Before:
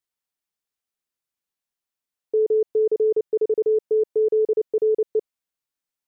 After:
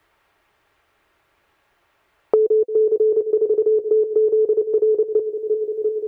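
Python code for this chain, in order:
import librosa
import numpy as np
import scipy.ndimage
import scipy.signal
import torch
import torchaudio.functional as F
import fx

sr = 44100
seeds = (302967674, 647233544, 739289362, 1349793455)

p1 = fx.peak_eq(x, sr, hz=180.0, db=-10.5, octaves=0.95)
p2 = fx.notch_comb(p1, sr, f0_hz=250.0)
p3 = p2 + fx.echo_wet_lowpass(p2, sr, ms=346, feedback_pct=51, hz=670.0, wet_db=-12.0, dry=0)
p4 = fx.band_squash(p3, sr, depth_pct=100)
y = p4 * 10.0 ** (5.5 / 20.0)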